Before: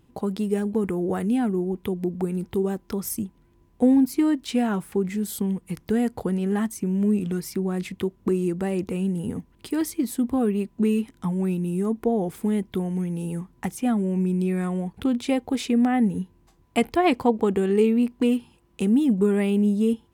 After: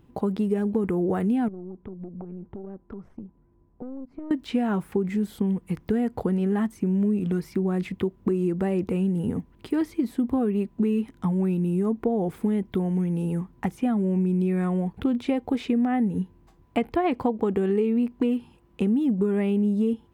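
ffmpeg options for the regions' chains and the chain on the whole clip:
-filter_complex "[0:a]asettb=1/sr,asplit=3[a][b][c];[a]atrim=end=1.484[d];[b]atrim=start=1.48:end=4.31,asetpts=PTS-STARTPTS,afade=t=in:d=0.004:c=qsin,afade=t=out:st=2.826:d=0.004:c=qsin,aeval=exprs='(tanh(6.31*val(0)+0.8)-tanh(0.8))/6.31':c=same,acompressor=threshold=-36dB:ratio=8:attack=3.2:release=140:knee=1:detection=peak,lowpass=1.2k[e];[c]atrim=start=4.306[f];[d][e]acrossfade=d=0.004:c1=hsin:c2=qsin[g];[g][f]acrossfade=d=0.004:c1=qsin:c2=hsin,acrossover=split=3900[h][i];[i]acompressor=threshold=-44dB:ratio=4:attack=1:release=60[j];[h][j]amix=inputs=2:normalize=0,equalizer=f=9.1k:t=o:w=2.7:g=-9.5,acompressor=threshold=-23dB:ratio=6,volume=3dB"

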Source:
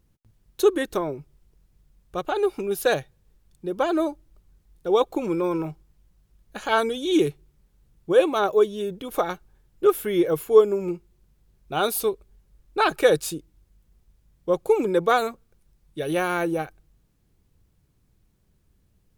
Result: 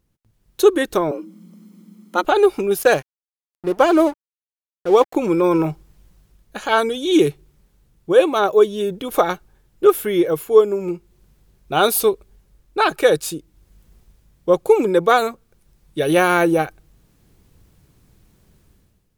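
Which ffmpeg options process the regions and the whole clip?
-filter_complex "[0:a]asettb=1/sr,asplit=3[a][b][c];[a]atrim=end=1.114[d];[b]atrim=start=1.11:end=2.24,asetpts=PTS-STARTPTS,afade=t=in:d=0.004:c=qsin,afade=t=out:st=1.126:d=0.004:c=qsin,bandreject=f=50:t=h:w=6,bandreject=f=100:t=h:w=6,bandreject=f=150:t=h:w=6,bandreject=f=200:t=h:w=6,aecho=1:1:1:0.54,atrim=end_sample=49833,afreqshift=170[e];[c]atrim=start=2.236[f];[d][e]acrossfade=d=0.004:c1=hsin:c2=qsin[g];[g][f]acrossfade=d=0.004:c1=qsin:c2=hsin,asettb=1/sr,asplit=3[h][i][j];[h]atrim=end=2.784[k];[i]atrim=start=2.78:end=5.15,asetpts=PTS-STARTPTS,afade=t=in:d=0.004:c=qsin,afade=t=out:st=2.366:d=0.004:c=qsin,bandreject=f=3.7k:w=6,aeval=exprs='sgn(val(0))*max(abs(val(0))-0.00891,0)':c=same[l];[j]atrim=start=5.146[m];[k][l]acrossfade=d=0.004:c1=hsin:c2=qsin[n];[n][m]acrossfade=d=0.004:c1=qsin:c2=hsin,lowshelf=f=110:g=-5,dynaudnorm=f=100:g=9:m=14dB,volume=-1dB"

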